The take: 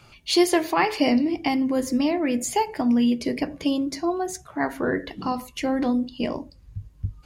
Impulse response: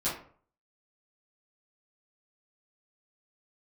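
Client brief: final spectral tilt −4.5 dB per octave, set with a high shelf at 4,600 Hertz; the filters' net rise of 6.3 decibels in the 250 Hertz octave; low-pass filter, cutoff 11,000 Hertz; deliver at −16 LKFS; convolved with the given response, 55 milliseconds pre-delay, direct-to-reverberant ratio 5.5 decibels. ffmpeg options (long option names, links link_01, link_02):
-filter_complex "[0:a]lowpass=11000,equalizer=frequency=250:width_type=o:gain=7,highshelf=frequency=4600:gain=6.5,asplit=2[link_01][link_02];[1:a]atrim=start_sample=2205,adelay=55[link_03];[link_02][link_03]afir=irnorm=-1:irlink=0,volume=-12.5dB[link_04];[link_01][link_04]amix=inputs=2:normalize=0,volume=1.5dB"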